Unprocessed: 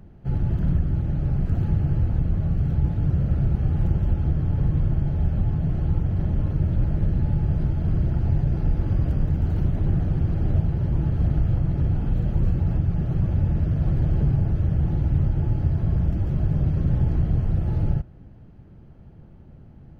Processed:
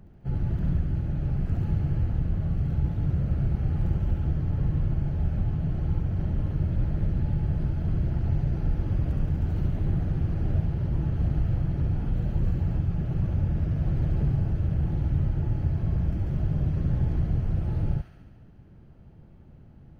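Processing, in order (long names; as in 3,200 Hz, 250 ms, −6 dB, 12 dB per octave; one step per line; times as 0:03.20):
delay with a high-pass on its return 70 ms, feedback 70%, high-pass 1,400 Hz, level −4 dB
level −4 dB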